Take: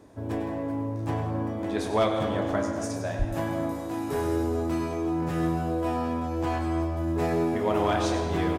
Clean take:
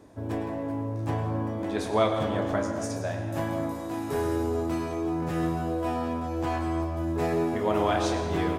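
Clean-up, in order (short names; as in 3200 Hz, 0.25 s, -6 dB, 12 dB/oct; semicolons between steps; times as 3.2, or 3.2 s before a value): clip repair -15 dBFS; de-plosive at 3.18; inverse comb 97 ms -12.5 dB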